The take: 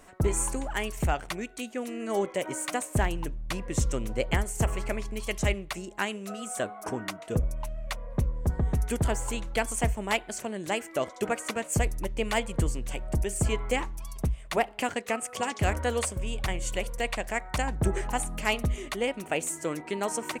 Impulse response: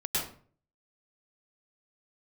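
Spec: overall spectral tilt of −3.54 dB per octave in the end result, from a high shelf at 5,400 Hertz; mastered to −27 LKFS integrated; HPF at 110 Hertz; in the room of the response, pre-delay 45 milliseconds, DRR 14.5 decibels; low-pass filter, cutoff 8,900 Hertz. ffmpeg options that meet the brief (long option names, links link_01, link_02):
-filter_complex "[0:a]highpass=110,lowpass=8900,highshelf=frequency=5400:gain=6,asplit=2[link_01][link_02];[1:a]atrim=start_sample=2205,adelay=45[link_03];[link_02][link_03]afir=irnorm=-1:irlink=0,volume=-21.5dB[link_04];[link_01][link_04]amix=inputs=2:normalize=0,volume=4dB"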